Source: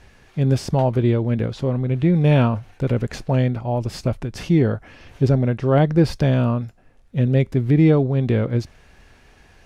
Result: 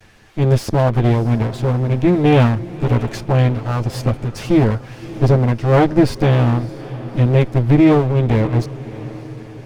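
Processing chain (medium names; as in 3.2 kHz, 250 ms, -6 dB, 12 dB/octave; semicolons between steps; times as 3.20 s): comb filter that takes the minimum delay 9.2 ms; echo that smears into a reverb 618 ms, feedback 54%, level -16 dB; trim +4 dB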